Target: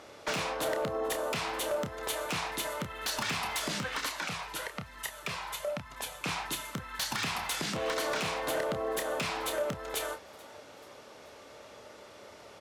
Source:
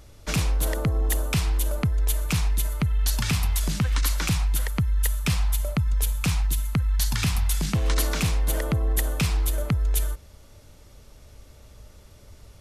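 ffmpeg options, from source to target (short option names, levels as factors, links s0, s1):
-filter_complex "[0:a]highpass=430,aemphasis=mode=reproduction:type=75fm,acompressor=threshold=0.0141:ratio=4,asoftclip=type=tanh:threshold=0.0376,asettb=1/sr,asplit=3[s0][s1][s2];[s0]atrim=end=4.094[s3];[s1]atrim=start=4.09:end=6.26,asetpts=PTS-STARTPTS,afade=t=in:d=0.004:c=qsin,afade=t=out:st=2.166:d=0.004:c=qsin,flanger=delay=1:depth=1.1:regen=-37:speed=1.1:shape=sinusoidal[s4];[s2]atrim=start=6.256[s5];[s3][s4]acrossfade=d=0.004:c1=hsin:c2=qsin[s6];[s6][s5]acrossfade=d=0.004:c1=qsin:c2=hsin,aeval=exprs='0.02*(abs(mod(val(0)/0.02+3,4)-2)-1)':c=same,asplit=2[s7][s8];[s8]adelay=29,volume=0.398[s9];[s7][s9]amix=inputs=2:normalize=0,asplit=4[s10][s11][s12][s13];[s11]adelay=434,afreqshift=150,volume=0.0668[s14];[s12]adelay=868,afreqshift=300,volume=0.0355[s15];[s13]adelay=1302,afreqshift=450,volume=0.0188[s16];[s10][s14][s15][s16]amix=inputs=4:normalize=0,volume=2.66"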